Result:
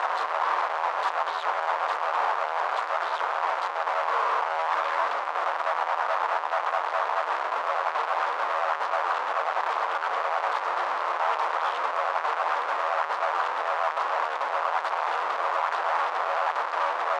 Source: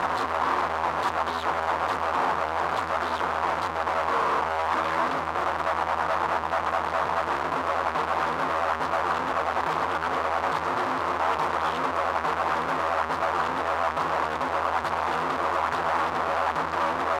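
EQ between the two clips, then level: HPF 520 Hz 24 dB/oct; air absorption 59 m; 0.0 dB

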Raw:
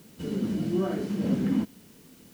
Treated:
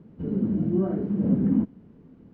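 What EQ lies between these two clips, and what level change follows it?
LPF 1200 Hz 12 dB/oct; low shelf 370 Hz +10 dB; -3.5 dB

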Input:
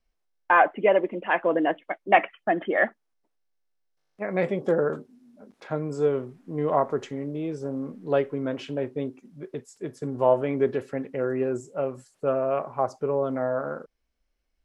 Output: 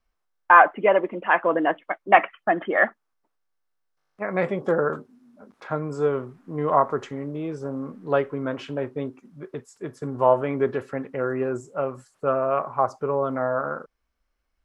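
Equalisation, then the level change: bell 83 Hz +4 dB 1.7 oct; bell 1200 Hz +9.5 dB 1.1 oct; -1.0 dB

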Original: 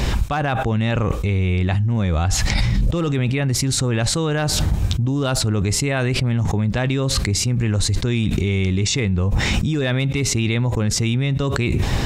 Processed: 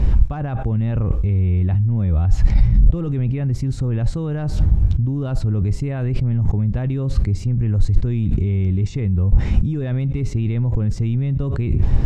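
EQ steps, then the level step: tilt -4 dB/oct; bell 3600 Hz -2.5 dB 0.37 oct; -11.0 dB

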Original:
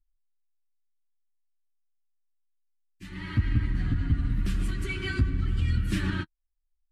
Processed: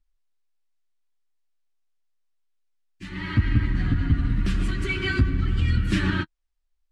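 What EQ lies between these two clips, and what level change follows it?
air absorption 59 m; low shelf 180 Hz -4.5 dB; +7.5 dB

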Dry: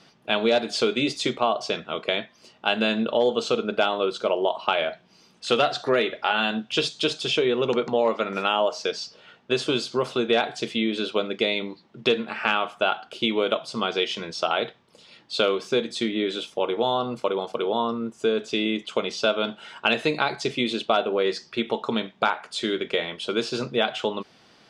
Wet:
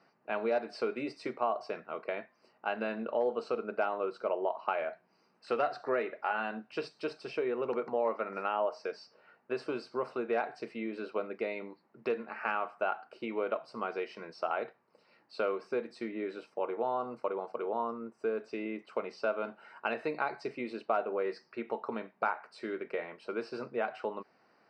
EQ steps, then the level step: running mean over 13 samples; HPF 540 Hz 6 dB/oct; -5.5 dB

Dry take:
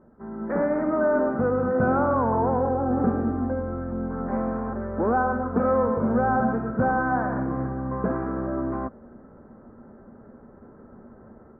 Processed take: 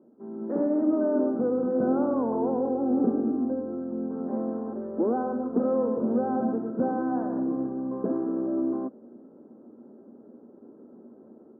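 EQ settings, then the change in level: ladder band-pass 350 Hz, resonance 45%; +9.0 dB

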